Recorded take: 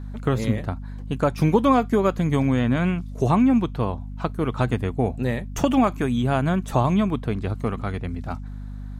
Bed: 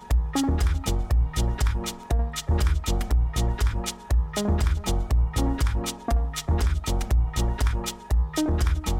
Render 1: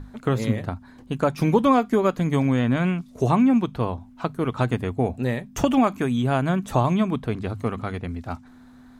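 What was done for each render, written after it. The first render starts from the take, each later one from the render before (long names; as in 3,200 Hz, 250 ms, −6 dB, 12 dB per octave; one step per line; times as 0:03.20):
mains-hum notches 50/100/150/200 Hz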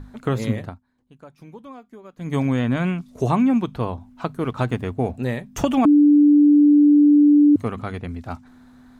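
0:00.59–0:02.38: duck −22.5 dB, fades 0.22 s
0:04.40–0:05.14: slack as between gear wheels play −50 dBFS
0:05.85–0:07.56: beep over 293 Hz −9.5 dBFS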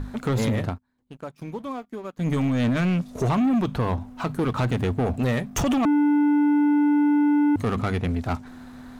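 brickwall limiter −17 dBFS, peak gain reduction 9.5 dB
leveller curve on the samples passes 2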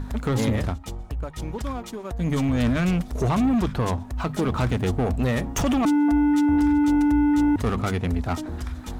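mix in bed −9 dB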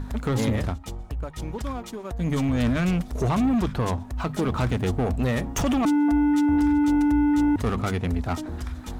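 level −1 dB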